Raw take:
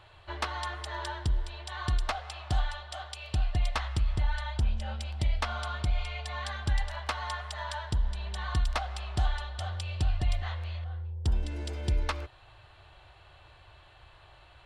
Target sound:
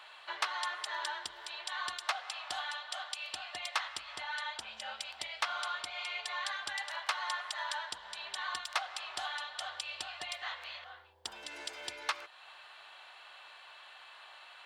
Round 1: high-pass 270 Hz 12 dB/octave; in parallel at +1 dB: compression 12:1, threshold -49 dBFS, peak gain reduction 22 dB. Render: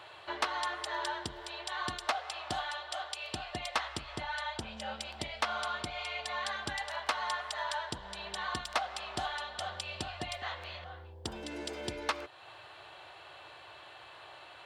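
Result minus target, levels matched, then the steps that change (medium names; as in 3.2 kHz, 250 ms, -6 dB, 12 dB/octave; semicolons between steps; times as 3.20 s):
250 Hz band +16.5 dB
change: high-pass 1 kHz 12 dB/octave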